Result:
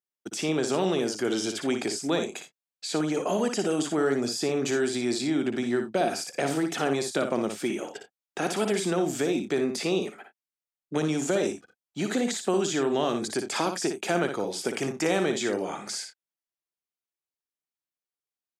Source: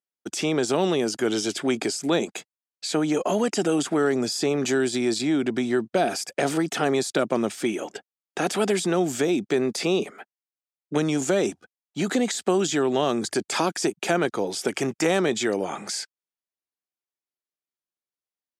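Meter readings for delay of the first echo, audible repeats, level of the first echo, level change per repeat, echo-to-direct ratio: 58 ms, 1, -7.0 dB, no regular repeats, -6.5 dB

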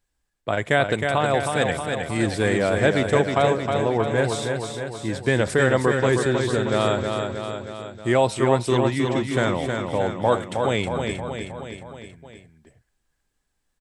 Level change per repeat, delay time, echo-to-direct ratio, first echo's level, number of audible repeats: -4.5 dB, 315 ms, -3.0 dB, -5.0 dB, 5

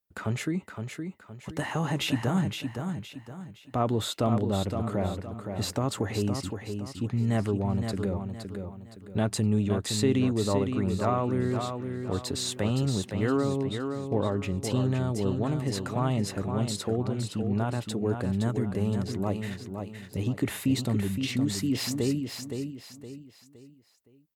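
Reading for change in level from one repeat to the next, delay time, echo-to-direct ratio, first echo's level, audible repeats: -9.0 dB, 516 ms, -6.0 dB, -6.5 dB, 4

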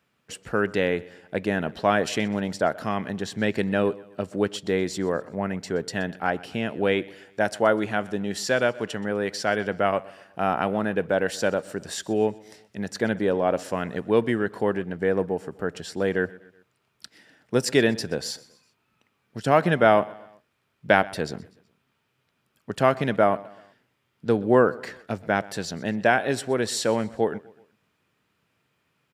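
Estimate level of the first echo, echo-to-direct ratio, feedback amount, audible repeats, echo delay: -21.5 dB, -20.5 dB, 47%, 3, 125 ms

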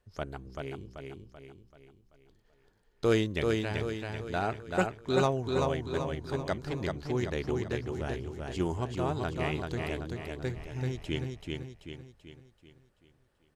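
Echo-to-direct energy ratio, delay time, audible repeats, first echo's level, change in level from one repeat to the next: -2.5 dB, 385 ms, 5, -3.5 dB, -6.5 dB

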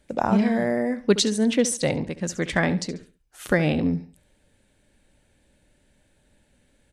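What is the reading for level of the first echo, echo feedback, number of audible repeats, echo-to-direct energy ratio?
-15.0 dB, 30%, 2, -14.5 dB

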